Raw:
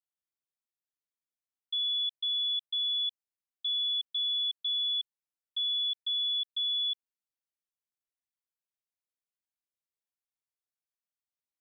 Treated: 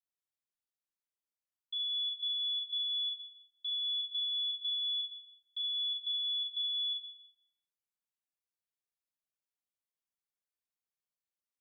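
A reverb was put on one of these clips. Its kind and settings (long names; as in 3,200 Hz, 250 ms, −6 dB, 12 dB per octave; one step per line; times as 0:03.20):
four-comb reverb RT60 0.68 s, combs from 31 ms, DRR 3.5 dB
level −6 dB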